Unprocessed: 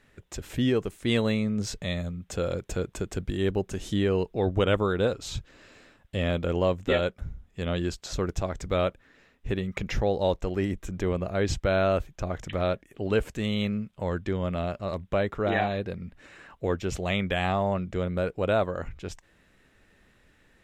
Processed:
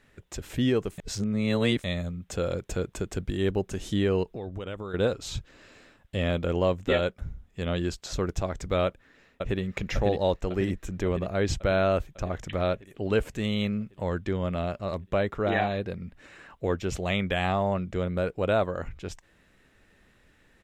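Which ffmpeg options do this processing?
-filter_complex "[0:a]asettb=1/sr,asplit=3[a][b][c];[a]atrim=end=4.234[d];[b]atrim=start=4.23:end=4.94,asetpts=PTS-STARTPTS,afade=t=in:d=0.004:c=qsin,afade=t=out:st=0.706:d=0.004:c=qsin,acompressor=threshold=-33dB:ratio=5:attack=3.2:release=140:knee=1:detection=peak[e];[c]atrim=start=4.936[f];[d][e]acrossfade=d=0.004:c1=hsin:c2=qsin[g];[g][f]acrossfade=d=0.004:c1=qsin:c2=hsin,asplit=2[h][i];[i]afade=t=in:st=8.85:d=0.01,afade=t=out:st=9.61:d=0.01,aecho=0:1:550|1100|1650|2200|2750|3300|3850|4400|4950|5500:0.630957|0.410122|0.266579|0.173277|0.11263|0.0732094|0.0475861|0.030931|0.0201051|0.0130683[j];[h][j]amix=inputs=2:normalize=0,asplit=3[k][l][m];[k]atrim=end=0.982[n];[l]atrim=start=0.978:end=1.842,asetpts=PTS-STARTPTS,areverse[o];[m]atrim=start=1.838[p];[n][o]acrossfade=d=0.004:c1=hsin:c2=hsin[q];[q][p]acrossfade=d=0.004:c1=hsin:c2=hsin"

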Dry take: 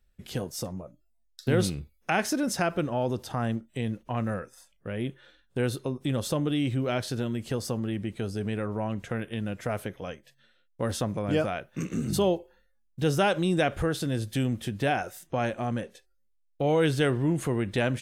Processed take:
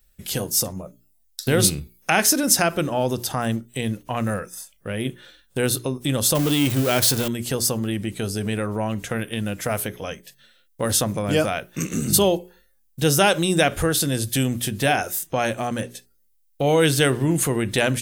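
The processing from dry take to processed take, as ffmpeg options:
-filter_complex "[0:a]asettb=1/sr,asplit=3[a][b][c];[a]atrim=end=6.354[d];[b]atrim=start=6.35:end=7.28,asetpts=PTS-STARTPTS,afade=t=in:d=0.004:c=qsin,afade=t=out:st=0.926:d=0.004:c=qsin,aeval=exprs='val(0)+0.5*0.0224*sgn(val(0))':c=same[e];[c]atrim=start=7.276[f];[d][e]acrossfade=d=0.004:c1=hsin:c2=qsin[g];[g][f]acrossfade=d=0.004:c1=qsin:c2=hsin,aemphasis=mode=production:type=75kf,bandreject=f=60:t=h:w=6,bandreject=f=120:t=h:w=6,bandreject=f=180:t=h:w=6,bandreject=f=240:t=h:w=6,bandreject=f=300:t=h:w=6,bandreject=f=360:t=h:w=6,bandreject=f=420:t=h:w=6,volume=5.5dB"

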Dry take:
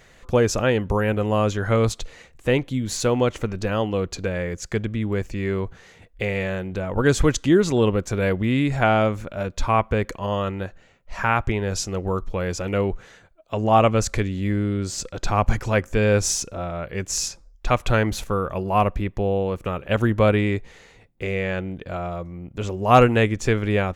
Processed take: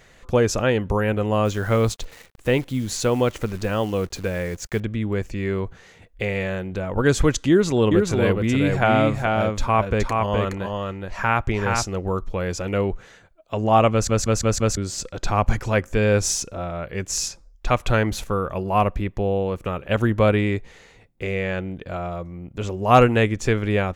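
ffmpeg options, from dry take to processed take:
-filter_complex "[0:a]asettb=1/sr,asplit=3[a][b][c];[a]atrim=end=1.454[d];[b]atrim=start=1.45:end=4.8,asetpts=PTS-STARTPTS,afade=t=in:d=0.004:c=qsin,afade=t=out:st=3.346:d=0.004:c=qsin,acrusher=bits=8:dc=4:mix=0:aa=0.000001[e];[c]atrim=start=4.796[f];[d][e]acrossfade=d=0.004:c1=hsin:c2=qsin[g];[g][f]acrossfade=d=0.004:c1=qsin:c2=hsin,asettb=1/sr,asplit=3[h][i][j];[h]atrim=end=7.494[k];[i]atrim=start=7.49:end=11.86,asetpts=PTS-STARTPTS,afade=t=in:d=0.004:c=qsin,afade=t=out:st=4.366:d=0.004:c=qsin,aecho=1:1:420:0.668,atrim=end_sample=192717[l];[j]atrim=start=11.856[m];[k][l]acrossfade=d=0.004:c1=hsin:c2=qsin[n];[n][m]acrossfade=d=0.004:c1=qsin:c2=hsin,asplit=6[o][p][q][r][s][t];[o]atrim=end=14.092[u];[p]atrim=start=13.918:end=14.092[v];[q]atrim=start=13.918:end=14.092[w];[r]atrim=start=13.918:end=14.092[x];[s]atrim=start=13.918:end=14.092[y];[t]atrim=start=14.768[z];[u][v]acrossfade=d=0.004:c1=hsin:c2=hsin[aa];[aa][w]acrossfade=d=0.004:c1=hsin:c2=hsin[ab];[ab][x]acrossfade=d=0.004:c1=hsin:c2=hsin[ac];[ac][y]acrossfade=d=0.004:c1=hsin:c2=hsin[ad];[ad][z]acrossfade=d=0.004:c1=hsin:c2=hsin"

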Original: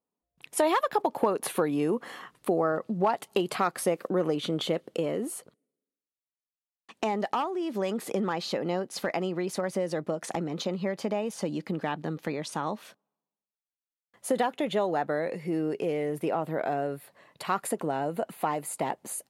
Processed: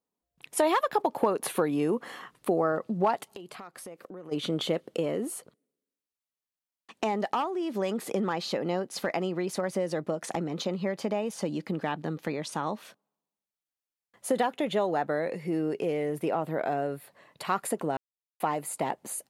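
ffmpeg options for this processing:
-filter_complex "[0:a]asplit=3[a][b][c];[a]afade=t=out:st=3.23:d=0.02[d];[b]acompressor=threshold=-43dB:ratio=4:attack=3.2:release=140:knee=1:detection=peak,afade=t=in:st=3.23:d=0.02,afade=t=out:st=4.31:d=0.02[e];[c]afade=t=in:st=4.31:d=0.02[f];[d][e][f]amix=inputs=3:normalize=0,asplit=3[g][h][i];[g]atrim=end=17.97,asetpts=PTS-STARTPTS,afade=t=out:st=17.966:d=0.004:c=hsin[j];[h]atrim=start=17.97:end=18.4,asetpts=PTS-STARTPTS,volume=0[k];[i]atrim=start=18.4,asetpts=PTS-STARTPTS,afade=t=in:d=0.004:c=hsin[l];[j][k][l]concat=n=3:v=0:a=1"

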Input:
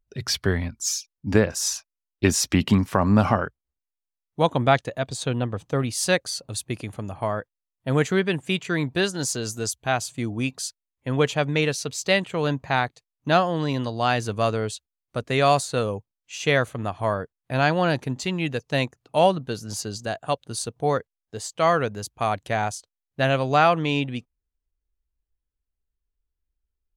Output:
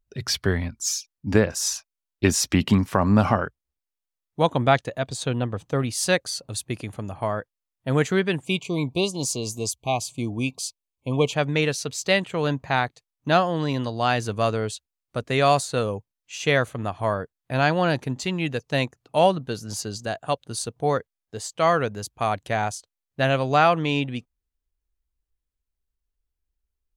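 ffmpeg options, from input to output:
-filter_complex "[0:a]asettb=1/sr,asplit=3[a][b][c];[a]atrim=end=8.444[d];[b]atrim=start=8.44:end=11.33,asetpts=PTS-STARTPTS,afade=t=in:d=0.004:c=qsin,afade=t=out:st=2.886:d=0.004:c=qsin,asuperstop=centerf=1600:order=20:qfactor=1.6[e];[c]atrim=start=11.326[f];[d][e]acrossfade=d=0.004:c1=hsin:c2=qsin[g];[g][f]acrossfade=d=0.004:c1=qsin:c2=hsin"

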